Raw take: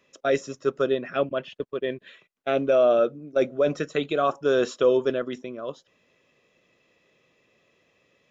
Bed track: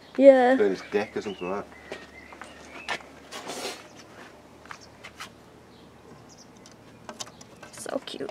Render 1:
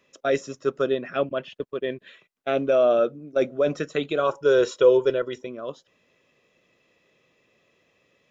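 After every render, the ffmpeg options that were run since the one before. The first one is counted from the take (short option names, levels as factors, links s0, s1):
-filter_complex "[0:a]asettb=1/sr,asplit=3[s0][s1][s2];[s0]atrim=end=4.194[s3];[s1]atrim=start=4.19:end=5.47,asetpts=PTS-STARTPTS,afade=t=in:d=0.004:c=qsin,afade=t=out:st=1.276:d=0.004:c=qsin,aecho=1:1:2.1:0.62,atrim=end_sample=56448[s4];[s2]atrim=start=5.466[s5];[s3][s4]acrossfade=d=0.004:c1=hsin:c2=qsin[s6];[s6][s5]acrossfade=d=0.004:c1=qsin:c2=hsin"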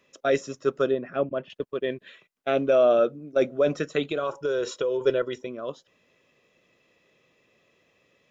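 -filter_complex "[0:a]asettb=1/sr,asplit=3[s0][s1][s2];[s0]atrim=end=0.914[s3];[s1]atrim=start=0.91:end=1.5,asetpts=PTS-STARTPTS,afade=t=in:d=0.004:c=qsin,afade=t=out:st=0.586:d=0.004:c=qsin,lowpass=f=1000:p=1[s4];[s2]atrim=start=1.496[s5];[s3][s4]acrossfade=d=0.004:c1=hsin:c2=qsin[s6];[s6][s5]acrossfade=d=0.004:c1=qsin:c2=hsin,asettb=1/sr,asplit=3[s7][s8][s9];[s7]atrim=end=4.034[s10];[s8]atrim=start=4.03:end=5.01,asetpts=PTS-STARTPTS,afade=t=in:d=0.004:c=qsin,afade=t=out:st=0.976:d=0.004:c=qsin,acompressor=threshold=0.0708:ratio=6:attack=3.2:release=140:knee=1:detection=peak[s11];[s9]atrim=start=5.006[s12];[s10][s11]acrossfade=d=0.004:c1=hsin:c2=qsin[s13];[s13][s12]acrossfade=d=0.004:c1=qsin:c2=hsin"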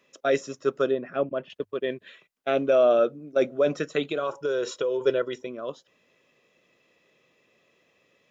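-af "lowshelf=f=85:g=-9.5,bandreject=f=50:t=h:w=6,bandreject=f=100:t=h:w=6"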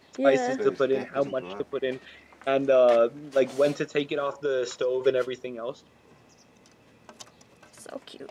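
-filter_complex "[1:a]volume=0.398[s0];[0:a][s0]amix=inputs=2:normalize=0"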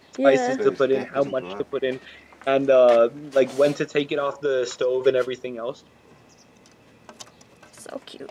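-af "volume=1.58"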